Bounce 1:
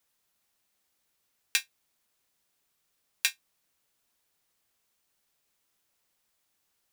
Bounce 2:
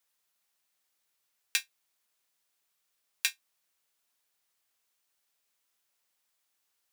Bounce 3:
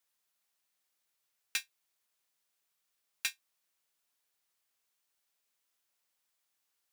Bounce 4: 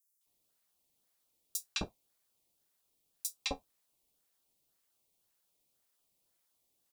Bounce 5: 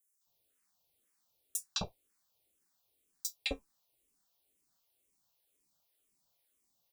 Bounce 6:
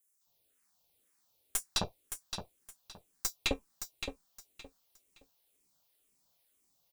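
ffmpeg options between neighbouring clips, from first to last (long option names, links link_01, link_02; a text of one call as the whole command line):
ffmpeg -i in.wav -af "lowshelf=frequency=400:gain=-10.5,volume=-2dB" out.wav
ffmpeg -i in.wav -af "volume=21dB,asoftclip=hard,volume=-21dB,volume=-3dB" out.wav
ffmpeg -i in.wav -filter_complex "[0:a]acrossover=split=280|630|2700[link_01][link_02][link_03][link_04];[link_03]acrusher=samples=19:mix=1:aa=0.000001:lfo=1:lforange=19:lforate=1.9[link_05];[link_01][link_02][link_05][link_04]amix=inputs=4:normalize=0,acrossover=split=1200|5900[link_06][link_07][link_08];[link_07]adelay=210[link_09];[link_06]adelay=260[link_10];[link_10][link_09][link_08]amix=inputs=3:normalize=0,volume=4dB" out.wav
ffmpeg -i in.wav -filter_complex "[0:a]asplit=2[link_01][link_02];[link_02]afreqshift=-2[link_03];[link_01][link_03]amix=inputs=2:normalize=1,volume=3dB" out.wav
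ffmpeg -i in.wav -filter_complex "[0:a]aeval=exprs='0.112*(cos(1*acos(clip(val(0)/0.112,-1,1)))-cos(1*PI/2))+0.0447*(cos(2*acos(clip(val(0)/0.112,-1,1)))-cos(2*PI/2))+0.0398*(cos(4*acos(clip(val(0)/0.112,-1,1)))-cos(4*PI/2))':channel_layout=same,asplit=2[link_01][link_02];[link_02]aecho=0:1:568|1136|1704:0.398|0.0995|0.0249[link_03];[link_01][link_03]amix=inputs=2:normalize=0,volume=3dB" out.wav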